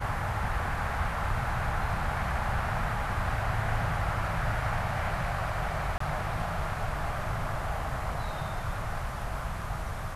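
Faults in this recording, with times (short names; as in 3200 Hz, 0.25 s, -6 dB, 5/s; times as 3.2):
5.98–6 gap 24 ms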